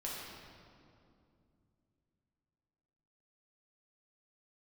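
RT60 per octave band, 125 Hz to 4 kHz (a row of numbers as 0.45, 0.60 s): 3.9, 3.6, 2.8, 2.3, 1.8, 1.6 s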